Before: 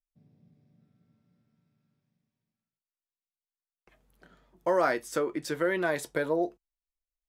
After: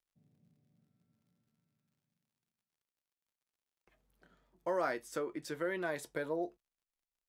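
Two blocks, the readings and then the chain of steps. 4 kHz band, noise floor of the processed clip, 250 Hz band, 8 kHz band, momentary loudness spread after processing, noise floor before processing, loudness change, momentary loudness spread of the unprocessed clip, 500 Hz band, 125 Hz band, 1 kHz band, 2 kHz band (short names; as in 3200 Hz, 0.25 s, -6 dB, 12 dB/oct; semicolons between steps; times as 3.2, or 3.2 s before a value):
-8.5 dB, under -85 dBFS, -8.5 dB, -8.5 dB, 6 LU, under -85 dBFS, -8.5 dB, 6 LU, -8.5 dB, -8.5 dB, -8.5 dB, -8.5 dB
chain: crackle 85/s -62 dBFS; gain -8.5 dB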